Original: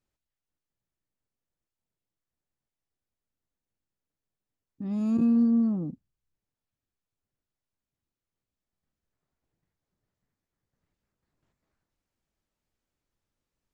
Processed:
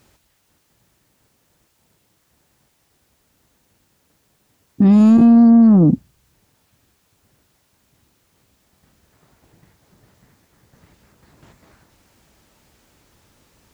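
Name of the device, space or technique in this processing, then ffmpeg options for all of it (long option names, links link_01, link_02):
mastering chain: -af "highpass=49,equalizer=frequency=890:width_type=o:width=0.2:gain=2,acompressor=threshold=-26dB:ratio=2,asoftclip=type=tanh:threshold=-23.5dB,alimiter=level_in=34.5dB:limit=-1dB:release=50:level=0:latency=1,volume=-5dB"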